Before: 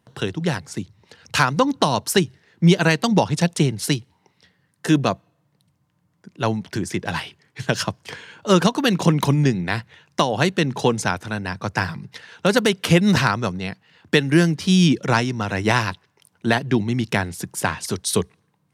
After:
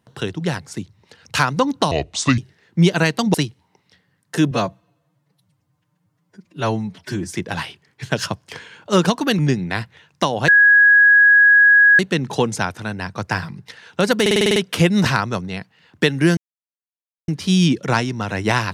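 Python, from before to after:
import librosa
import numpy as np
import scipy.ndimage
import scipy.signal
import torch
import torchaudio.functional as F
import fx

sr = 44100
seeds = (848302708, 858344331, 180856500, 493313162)

y = fx.edit(x, sr, fx.speed_span(start_s=1.91, length_s=0.32, speed=0.68),
    fx.cut(start_s=3.19, length_s=0.66),
    fx.stretch_span(start_s=5.02, length_s=1.88, factor=1.5),
    fx.cut(start_s=8.96, length_s=0.4),
    fx.insert_tone(at_s=10.45, length_s=1.51, hz=1660.0, db=-7.5),
    fx.stutter(start_s=12.67, slice_s=0.05, count=8),
    fx.insert_silence(at_s=14.48, length_s=0.91), tone=tone)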